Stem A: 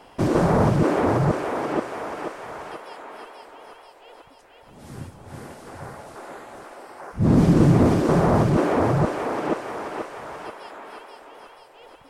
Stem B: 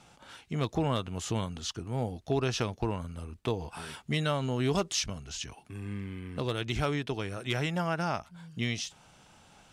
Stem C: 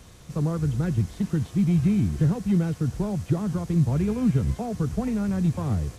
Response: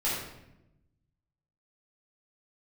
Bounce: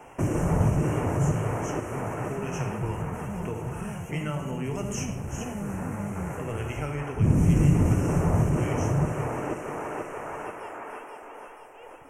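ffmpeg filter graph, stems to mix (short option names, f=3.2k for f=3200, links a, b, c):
-filter_complex "[0:a]volume=-1dB,asplit=2[a][b];[b]volume=-14dB[c];[1:a]volume=-5dB,asplit=3[d][e][f];[e]volume=-7.5dB[g];[2:a]highshelf=f=7.2k:g=8,asoftclip=type=tanh:threshold=-25.5dB,adelay=400,volume=-2.5dB,asplit=2[h][i];[i]volume=-4.5dB[j];[f]apad=whole_len=281461[k];[h][k]sidechaincompress=threshold=-43dB:ratio=8:attack=16:release=723[l];[3:a]atrim=start_sample=2205[m];[c][g]amix=inputs=2:normalize=0[n];[n][m]afir=irnorm=-1:irlink=0[o];[j]aecho=0:1:411:1[p];[a][d][l][o][p]amix=inputs=5:normalize=0,acrossover=split=150|3000[q][r][s];[r]acompressor=threshold=-31dB:ratio=3[t];[q][t][s]amix=inputs=3:normalize=0,asuperstop=centerf=4100:order=8:qfactor=1.4"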